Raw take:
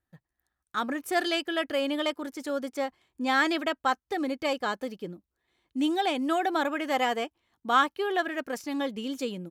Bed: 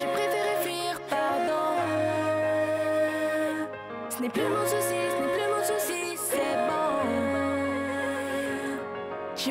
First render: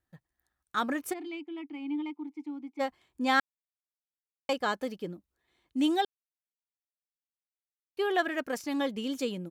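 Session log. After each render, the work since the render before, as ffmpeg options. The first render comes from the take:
ffmpeg -i in.wav -filter_complex "[0:a]asplit=3[link_01][link_02][link_03];[link_01]afade=type=out:start_time=1.12:duration=0.02[link_04];[link_02]asplit=3[link_05][link_06][link_07];[link_05]bandpass=frequency=300:width_type=q:width=8,volume=0dB[link_08];[link_06]bandpass=frequency=870:width_type=q:width=8,volume=-6dB[link_09];[link_07]bandpass=frequency=2240:width_type=q:width=8,volume=-9dB[link_10];[link_08][link_09][link_10]amix=inputs=3:normalize=0,afade=type=in:start_time=1.12:duration=0.02,afade=type=out:start_time=2.79:duration=0.02[link_11];[link_03]afade=type=in:start_time=2.79:duration=0.02[link_12];[link_04][link_11][link_12]amix=inputs=3:normalize=0,asplit=5[link_13][link_14][link_15][link_16][link_17];[link_13]atrim=end=3.4,asetpts=PTS-STARTPTS,afade=type=out:start_time=3.396:duration=0.004:curve=hsin[link_18];[link_14]atrim=start=3.4:end=4.49,asetpts=PTS-STARTPTS,volume=0[link_19];[link_15]atrim=start=4.49:end=6.05,asetpts=PTS-STARTPTS,afade=type=in:duration=0.004:curve=hsin,afade=type=out:start_time=1.556:duration=0.004:curve=hsin[link_20];[link_16]atrim=start=6.05:end=7.97,asetpts=PTS-STARTPTS,volume=0[link_21];[link_17]atrim=start=7.97,asetpts=PTS-STARTPTS,afade=type=in:duration=0.004:curve=hsin[link_22];[link_18][link_19][link_20][link_21][link_22]concat=n=5:v=0:a=1" out.wav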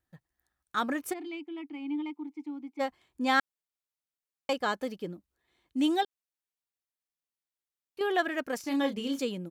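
ffmpeg -i in.wav -filter_complex "[0:a]asettb=1/sr,asplit=3[link_01][link_02][link_03];[link_01]atrim=end=6.034[link_04];[link_02]atrim=start=6.03:end=8.01,asetpts=PTS-STARTPTS,afade=type=in:duration=0.004:curve=qsin,afade=type=out:start_time=1.976:duration=0.004:curve=qsin,acompressor=threshold=-41dB:ratio=2:attack=3.2:release=140:knee=1:detection=peak[link_05];[link_03]atrim=start=8.006[link_06];[link_04][link_05]acrossfade=duration=0.004:curve1=hsin:curve2=qsin[link_07];[link_07][link_06]acrossfade=duration=0.004:curve1=qsin:curve2=hsin,asettb=1/sr,asplit=3[link_08][link_09][link_10];[link_08]atrim=end=8.624[link_11];[link_09]atrim=start=8.62:end=9.19,asetpts=PTS-STARTPTS,afade=type=in:duration=0.004:curve=qsin,afade=type=out:start_time=0.566:duration=0.004:curve=qsin,asplit=2[link_12][link_13];[link_13]adelay=29,volume=-6dB[link_14];[link_12][link_14]amix=inputs=2:normalize=0,atrim=end_sample=25137[link_15];[link_10]atrim=start=9.186[link_16];[link_11][link_15]acrossfade=duration=0.004:curve1=hsin:curve2=qsin[link_17];[link_17][link_16]acrossfade=duration=0.004:curve1=qsin:curve2=hsin" out.wav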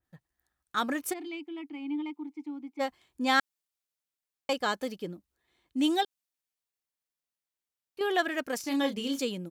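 ffmpeg -i in.wav -af "adynamicequalizer=threshold=0.00631:dfrequency=2700:dqfactor=0.7:tfrequency=2700:tqfactor=0.7:attack=5:release=100:ratio=0.375:range=2.5:mode=boostabove:tftype=highshelf" out.wav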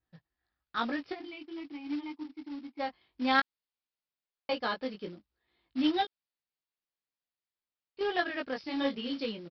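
ffmpeg -i in.wav -af "flanger=delay=17:depth=2.6:speed=1.1,aresample=11025,acrusher=bits=4:mode=log:mix=0:aa=0.000001,aresample=44100" out.wav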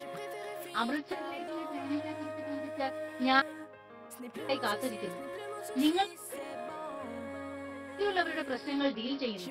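ffmpeg -i in.wav -i bed.wav -filter_complex "[1:a]volume=-14.5dB[link_01];[0:a][link_01]amix=inputs=2:normalize=0" out.wav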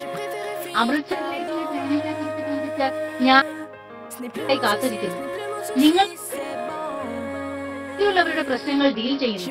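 ffmpeg -i in.wav -af "volume=12dB,alimiter=limit=-2dB:level=0:latency=1" out.wav

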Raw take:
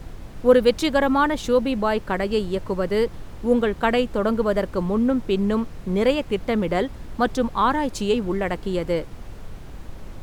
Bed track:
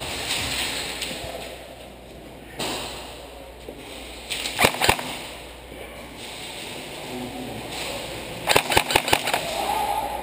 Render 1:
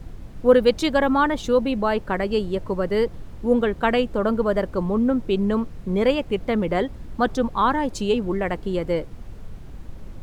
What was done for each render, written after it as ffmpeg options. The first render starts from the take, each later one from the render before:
ffmpeg -i in.wav -af "afftdn=noise_reduction=6:noise_floor=-38" out.wav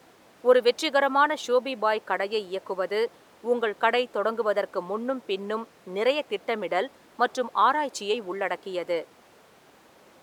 ffmpeg -i in.wav -af "highpass=530" out.wav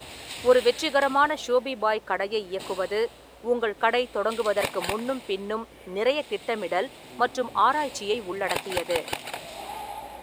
ffmpeg -i in.wav -i bed.wav -filter_complex "[1:a]volume=-12dB[link_01];[0:a][link_01]amix=inputs=2:normalize=0" out.wav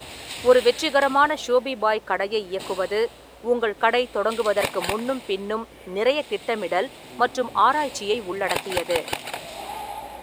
ffmpeg -i in.wav -af "volume=3dB" out.wav

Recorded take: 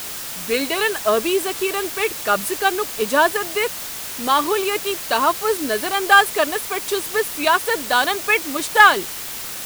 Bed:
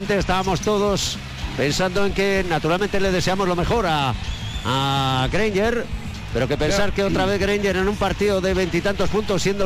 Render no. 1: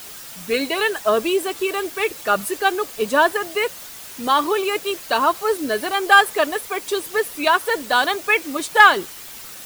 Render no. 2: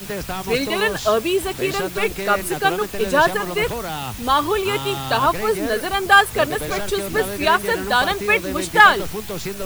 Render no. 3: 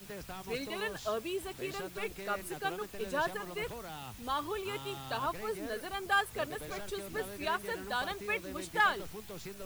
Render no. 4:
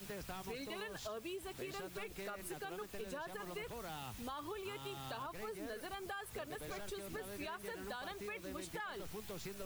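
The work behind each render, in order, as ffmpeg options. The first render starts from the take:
ffmpeg -i in.wav -af "afftdn=noise_reduction=8:noise_floor=-31" out.wav
ffmpeg -i in.wav -i bed.wav -filter_complex "[1:a]volume=-8dB[link_01];[0:a][link_01]amix=inputs=2:normalize=0" out.wav
ffmpeg -i in.wav -af "volume=-17dB" out.wav
ffmpeg -i in.wav -af "alimiter=level_in=4.5dB:limit=-24dB:level=0:latency=1:release=49,volume=-4.5dB,acompressor=threshold=-42dB:ratio=6" out.wav

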